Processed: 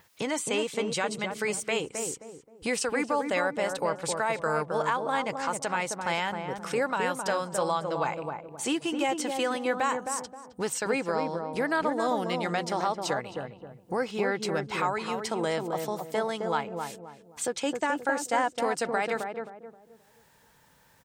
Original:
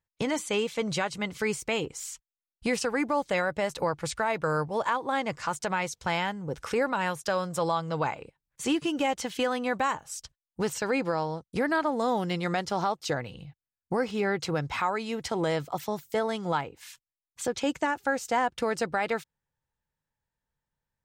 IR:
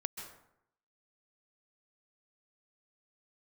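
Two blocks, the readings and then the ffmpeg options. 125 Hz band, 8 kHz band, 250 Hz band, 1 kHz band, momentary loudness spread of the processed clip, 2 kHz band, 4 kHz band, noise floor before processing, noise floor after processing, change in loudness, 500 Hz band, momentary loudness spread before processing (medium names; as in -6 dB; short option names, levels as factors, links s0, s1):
-4.0 dB, +3.5 dB, -1.5 dB, +0.5 dB, 8 LU, +0.5 dB, +0.5 dB, under -85 dBFS, -61 dBFS, 0.0 dB, +0.5 dB, 7 LU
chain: -filter_complex "[0:a]highpass=f=280:p=1,adynamicequalizer=threshold=0.00141:dfrequency=8500:dqfactor=3.5:tfrequency=8500:tqfactor=3.5:attack=5:release=100:ratio=0.375:range=4:mode=boostabove:tftype=bell,acompressor=mode=upward:threshold=0.0112:ratio=2.5,asplit=2[s0][s1];[s1]adelay=264,lowpass=f=810:p=1,volume=0.708,asplit=2[s2][s3];[s3]adelay=264,lowpass=f=810:p=1,volume=0.39,asplit=2[s4][s5];[s5]adelay=264,lowpass=f=810:p=1,volume=0.39,asplit=2[s6][s7];[s7]adelay=264,lowpass=f=810:p=1,volume=0.39,asplit=2[s8][s9];[s9]adelay=264,lowpass=f=810:p=1,volume=0.39[s10];[s2][s4][s6][s8][s10]amix=inputs=5:normalize=0[s11];[s0][s11]amix=inputs=2:normalize=0"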